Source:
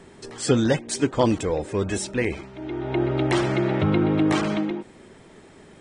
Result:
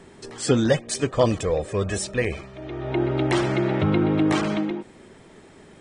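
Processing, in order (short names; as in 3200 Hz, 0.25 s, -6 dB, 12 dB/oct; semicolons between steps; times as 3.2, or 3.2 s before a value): 0.69–2.92 comb 1.7 ms, depth 48%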